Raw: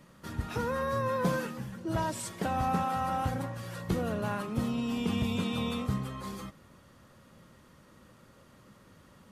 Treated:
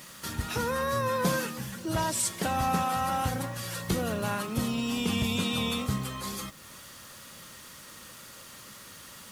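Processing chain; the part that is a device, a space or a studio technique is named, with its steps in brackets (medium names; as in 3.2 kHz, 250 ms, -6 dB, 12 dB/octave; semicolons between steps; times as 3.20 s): noise-reduction cassette on a plain deck (tape noise reduction on one side only encoder only; wow and flutter 21 cents; white noise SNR 39 dB); treble shelf 2.6 kHz +11.5 dB; trim +1 dB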